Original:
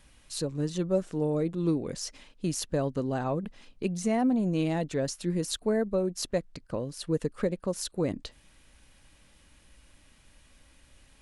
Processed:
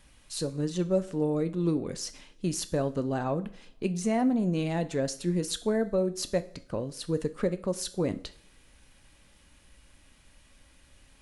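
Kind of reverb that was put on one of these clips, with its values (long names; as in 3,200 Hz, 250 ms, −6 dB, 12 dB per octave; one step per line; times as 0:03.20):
coupled-rooms reverb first 0.47 s, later 2.4 s, from −28 dB, DRR 11 dB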